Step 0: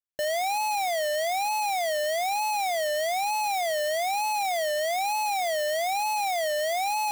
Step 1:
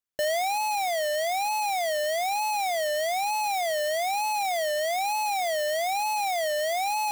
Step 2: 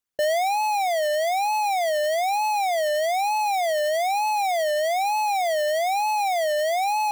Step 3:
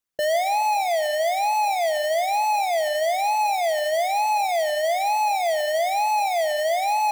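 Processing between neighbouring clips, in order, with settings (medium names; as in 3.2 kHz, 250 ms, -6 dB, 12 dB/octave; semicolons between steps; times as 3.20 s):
gain riding 0.5 s
resonances exaggerated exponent 1.5; trim +4 dB
simulated room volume 3600 m³, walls mixed, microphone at 0.73 m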